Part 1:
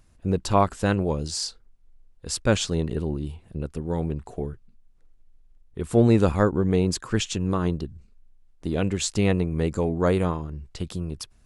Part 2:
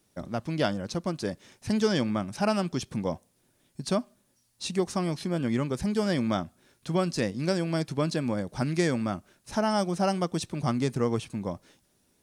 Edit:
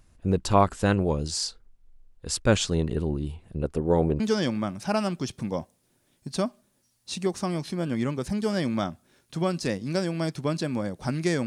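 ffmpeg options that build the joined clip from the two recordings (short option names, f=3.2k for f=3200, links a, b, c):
-filter_complex "[0:a]asettb=1/sr,asplit=3[a][b][c];[a]atrim=end=3.634[d];[b]atrim=start=3.63:end=4.2,asetpts=PTS-STARTPTS,afade=t=in:d=0.004:c=qsin,afade=t=out:st=0.566:d=0.004:c=qsin,equalizer=f=560:t=o:w=2.1:g=8.5[e];[c]atrim=start=4.196[f];[d][e]acrossfade=d=0.004:c1=hsin:c2=qsin[g];[g][f]acrossfade=d=0.004:c1=qsin:c2=hsin,apad=whole_dur=11.46,atrim=end=11.46,atrim=end=4.202[h];[1:a]atrim=start=1.728:end=8.99[i];[h][i]acrossfade=d=0.004:c1=hsin:c2=hsin"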